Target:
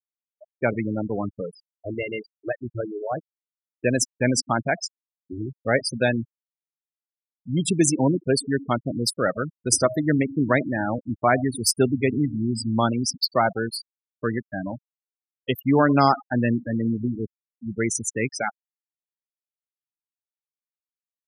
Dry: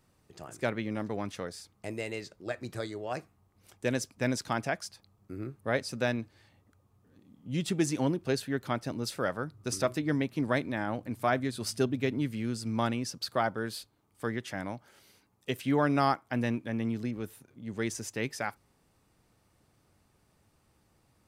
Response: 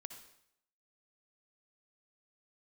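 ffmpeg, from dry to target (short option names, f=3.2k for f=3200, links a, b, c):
-filter_complex "[0:a]aemphasis=mode=production:type=50fm,asplit=2[a][b];[1:a]atrim=start_sample=2205,afade=t=out:st=0.25:d=0.01,atrim=end_sample=11466[c];[b][c]afir=irnorm=-1:irlink=0,volume=-1.5dB[d];[a][d]amix=inputs=2:normalize=0,afftfilt=real='re*gte(hypot(re,im),0.0708)':imag='im*gte(hypot(re,im),0.0708)':win_size=1024:overlap=0.75,volume=5.5dB"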